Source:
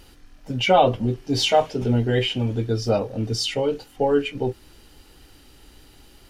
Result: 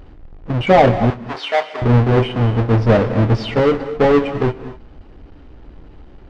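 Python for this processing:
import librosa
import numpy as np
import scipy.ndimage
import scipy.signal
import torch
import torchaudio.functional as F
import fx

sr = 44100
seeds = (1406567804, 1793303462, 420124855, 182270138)

y = fx.halfwave_hold(x, sr)
y = fx.highpass(y, sr, hz=780.0, slope=12, at=(1.1, 1.82))
y = fx.leveller(y, sr, passes=1, at=(2.73, 4.12))
y = fx.spacing_loss(y, sr, db_at_10k=41)
y = fx.rev_gated(y, sr, seeds[0], gate_ms=270, shape='rising', drr_db=12.0)
y = F.gain(torch.from_numpy(y), 5.0).numpy()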